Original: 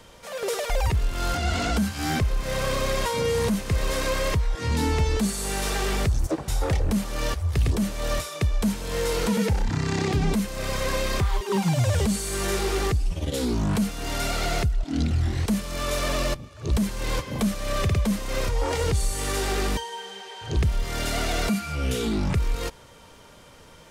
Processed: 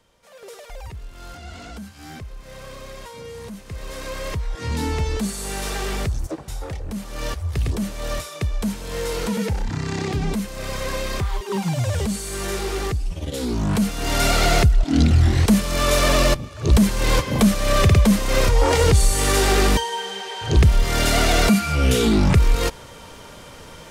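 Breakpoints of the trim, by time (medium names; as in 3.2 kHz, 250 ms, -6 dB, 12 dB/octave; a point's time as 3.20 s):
3.44 s -12.5 dB
4.62 s -0.5 dB
6.03 s -0.5 dB
6.81 s -8 dB
7.27 s -0.5 dB
13.36 s -0.5 dB
14.27 s +8.5 dB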